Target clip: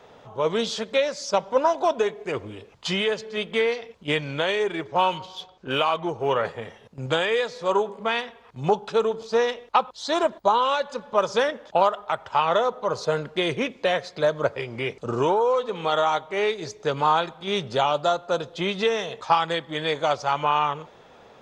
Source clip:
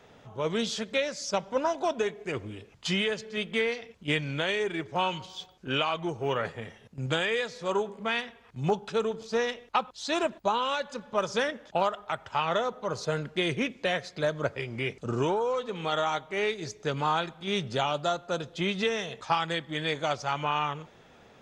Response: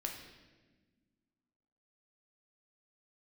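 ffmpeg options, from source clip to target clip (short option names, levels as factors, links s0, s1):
-filter_complex "[0:a]equalizer=f=500:t=o:w=1:g=6,equalizer=f=1000:t=o:w=1:g=7,equalizer=f=4000:t=o:w=1:g=4,asettb=1/sr,asplit=3[s0][s1][s2];[s0]atrim=end=4.884[s3];[s1]atrim=start=4.88:end=6.2,asetpts=PTS-STARTPTS,afade=t=in:d=0.004:c=qsin,afade=t=out:st=1.316:d=0.004:c=qsin,adynamicsmooth=sensitivity=7.5:basefreq=7600[s4];[s2]atrim=start=6.196[s5];[s3][s4]acrossfade=d=0.004:c1=hsin:c2=qsin[s6];[s6][s5]acrossfade=d=0.004:c1=qsin:c2=hsin,asettb=1/sr,asplit=3[s7][s8][s9];[s7]atrim=end=9.964[s10];[s8]atrim=start=9.96:end=10.65,asetpts=PTS-STARTPTS,afade=t=in:d=0.004:c=qsin,afade=t=out:st=0.686:d=0.004:c=qsin,bandreject=f=2600:w=7.3[s11];[s9]atrim=start=10.646[s12];[s10][s11]acrossfade=d=0.004:c1=hsin:c2=qsin[s13];[s13][s12]acrossfade=d=0.004:c1=qsin:c2=hsin"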